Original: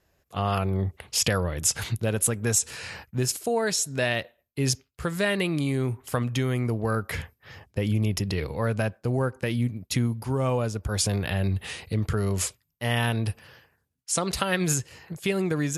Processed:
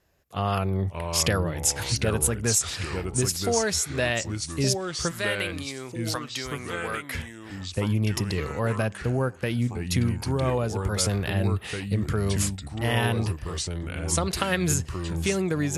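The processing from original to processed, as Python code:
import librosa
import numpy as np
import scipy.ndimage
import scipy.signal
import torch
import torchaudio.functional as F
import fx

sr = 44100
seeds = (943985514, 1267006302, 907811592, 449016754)

y = fx.highpass(x, sr, hz=1000.0, slope=6, at=(5.11, 7.15))
y = fx.echo_pitch(y, sr, ms=513, semitones=-3, count=2, db_per_echo=-6.0)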